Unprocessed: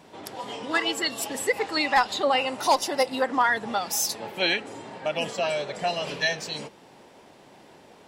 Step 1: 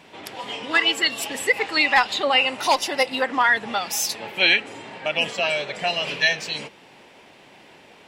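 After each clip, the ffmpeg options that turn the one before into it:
-af "equalizer=f=2.5k:w=1.1:g=10"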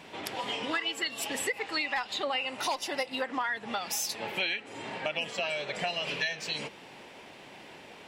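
-af "acompressor=threshold=-30dB:ratio=5"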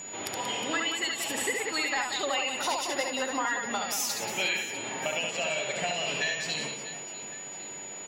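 -af "aecho=1:1:70|182|361.2|647.9|1107:0.631|0.398|0.251|0.158|0.1,aeval=exprs='val(0)+0.0112*sin(2*PI*6900*n/s)':c=same"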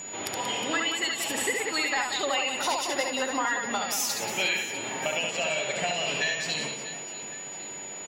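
-af "aecho=1:1:302|604|906|1208:0.0631|0.0347|0.0191|0.0105,volume=2dB"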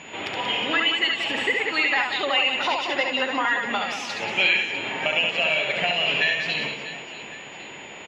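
-af "lowpass=f=2.8k:t=q:w=2,volume=2.5dB"

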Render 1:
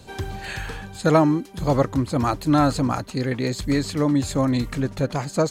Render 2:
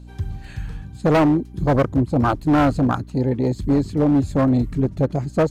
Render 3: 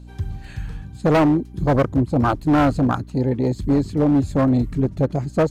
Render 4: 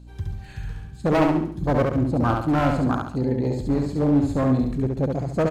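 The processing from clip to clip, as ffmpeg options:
-af "afwtdn=0.0794,volume=16.5dB,asoftclip=hard,volume=-16.5dB,aeval=exprs='val(0)+0.00708*(sin(2*PI*60*n/s)+sin(2*PI*2*60*n/s)/2+sin(2*PI*3*60*n/s)/3+sin(2*PI*4*60*n/s)/4+sin(2*PI*5*60*n/s)/5)':c=same,volume=4.5dB"
-af anull
-af "aecho=1:1:69|138|207|276|345:0.668|0.274|0.112|0.0461|0.0189,volume=-4.5dB"

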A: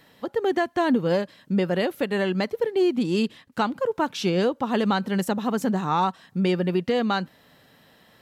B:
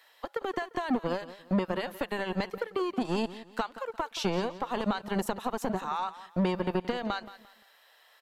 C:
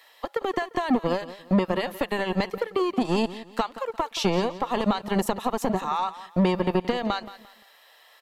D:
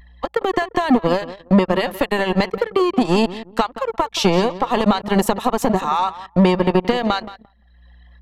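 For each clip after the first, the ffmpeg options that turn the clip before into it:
-filter_complex "[0:a]acrossover=split=140[a][b];[b]acompressor=threshold=-25dB:ratio=4[c];[a][c]amix=inputs=2:normalize=0,acrossover=split=590[d][e];[d]acrusher=bits=3:mix=0:aa=0.5[f];[f][e]amix=inputs=2:normalize=0,aecho=1:1:174|348|522:0.168|0.052|0.0161,volume=-2.5dB"
-af "bandreject=f=1.5k:w=7.8,volume=6dB"
-af "aeval=exprs='val(0)+0.00112*(sin(2*PI*60*n/s)+sin(2*PI*2*60*n/s)/2+sin(2*PI*3*60*n/s)/3+sin(2*PI*4*60*n/s)/4+sin(2*PI*5*60*n/s)/5)':c=same,anlmdn=0.1,acompressor=mode=upward:threshold=-41dB:ratio=2.5,volume=7.5dB"

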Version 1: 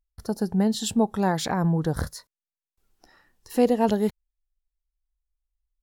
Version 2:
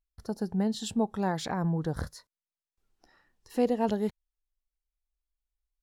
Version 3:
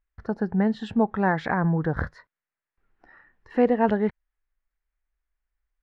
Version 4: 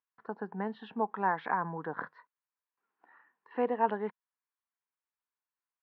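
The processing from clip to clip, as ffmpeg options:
-af "highshelf=f=11k:g=-11.5,volume=-6dB"
-af "lowpass=f=1.8k:t=q:w=2.5,volume=5.5dB"
-af "highpass=f=230:w=0.5412,highpass=f=230:w=1.3066,equalizer=f=230:t=q:w=4:g=-5,equalizer=f=340:t=q:w=4:g=-6,equalizer=f=580:t=q:w=4:g=-6,equalizer=f=1k:t=q:w=4:g=9,equalizer=f=2k:t=q:w=4:g=-4,lowpass=f=3.3k:w=0.5412,lowpass=f=3.3k:w=1.3066,volume=-7dB"

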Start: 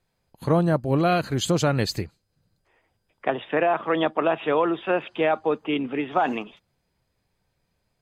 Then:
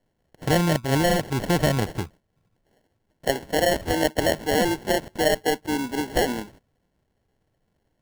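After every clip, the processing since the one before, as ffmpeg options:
-filter_complex "[0:a]acrossover=split=2800[a][b];[b]acompressor=threshold=-45dB:ratio=4:attack=1:release=60[c];[a][c]amix=inputs=2:normalize=0,lowpass=f=7.2k:t=q:w=11,acrusher=samples=36:mix=1:aa=0.000001"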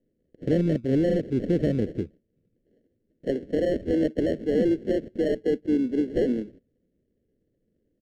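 -filter_complex "[0:a]asplit=2[a][b];[b]aeval=exprs='(mod(6.68*val(0)+1,2)-1)/6.68':c=same,volume=-11dB[c];[a][c]amix=inputs=2:normalize=0,firequalizer=gain_entry='entry(130,0);entry(240,9);entry(510,6);entry(890,-29);entry(1700,-8);entry(13000,-29)':delay=0.05:min_phase=1,volume=-6.5dB"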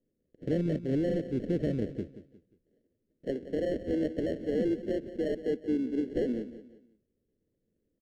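-af "aecho=1:1:178|356|534:0.211|0.074|0.0259,volume=-6.5dB"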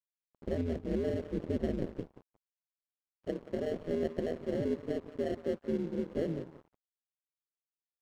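-af "aeval=exprs='sgn(val(0))*max(abs(val(0))-0.00355,0)':c=same,aeval=exprs='val(0)*sin(2*PI*81*n/s)':c=same"

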